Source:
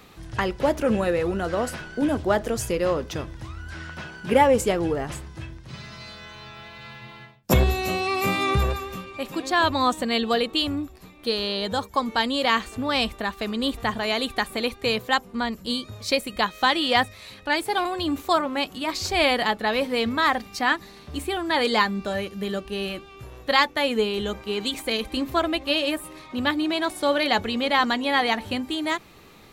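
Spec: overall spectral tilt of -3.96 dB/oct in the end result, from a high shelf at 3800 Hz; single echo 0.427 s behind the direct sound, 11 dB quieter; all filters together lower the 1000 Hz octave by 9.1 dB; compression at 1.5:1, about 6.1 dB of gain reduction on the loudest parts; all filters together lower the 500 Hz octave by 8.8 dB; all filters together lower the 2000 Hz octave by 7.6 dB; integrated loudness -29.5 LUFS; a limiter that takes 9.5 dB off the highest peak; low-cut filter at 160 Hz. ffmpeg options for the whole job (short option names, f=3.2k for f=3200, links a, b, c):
-af "highpass=160,equalizer=f=500:t=o:g=-8.5,equalizer=f=1k:t=o:g=-7,equalizer=f=2k:t=o:g=-6,highshelf=f=3.8k:g=-3.5,acompressor=threshold=-37dB:ratio=1.5,alimiter=level_in=2dB:limit=-24dB:level=0:latency=1,volume=-2dB,aecho=1:1:427:0.282,volume=7dB"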